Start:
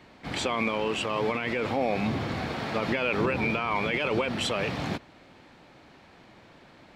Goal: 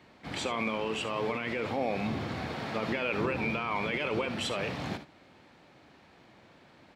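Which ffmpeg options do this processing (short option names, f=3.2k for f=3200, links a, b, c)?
-af "highpass=53,aecho=1:1:59|73:0.2|0.188,volume=-4.5dB"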